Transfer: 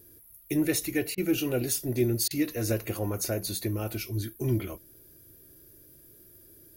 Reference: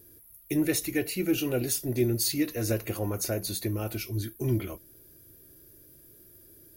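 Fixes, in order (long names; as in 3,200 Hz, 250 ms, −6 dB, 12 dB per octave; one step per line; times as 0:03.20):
repair the gap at 0:01.15/0:02.28, 26 ms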